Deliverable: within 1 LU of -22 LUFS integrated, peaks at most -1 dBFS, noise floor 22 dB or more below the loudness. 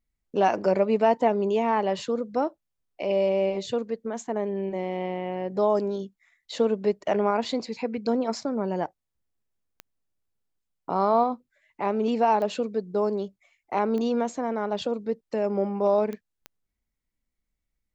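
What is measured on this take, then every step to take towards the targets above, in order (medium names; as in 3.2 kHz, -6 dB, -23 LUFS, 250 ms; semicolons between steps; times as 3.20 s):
clicks found 5; loudness -26.5 LUFS; peak level -9.5 dBFS; loudness target -22.0 LUFS
-> de-click; trim +4.5 dB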